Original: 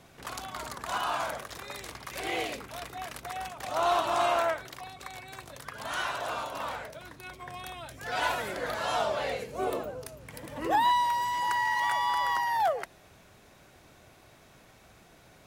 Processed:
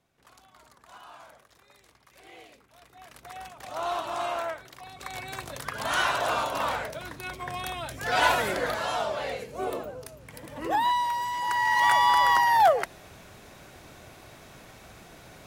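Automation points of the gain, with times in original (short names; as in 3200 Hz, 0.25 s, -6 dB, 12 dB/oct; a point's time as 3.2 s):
2.69 s -17.5 dB
3.34 s -4.5 dB
4.74 s -4.5 dB
5.2 s +7 dB
8.53 s +7 dB
8.96 s -0.5 dB
11.42 s -0.5 dB
11.88 s +7.5 dB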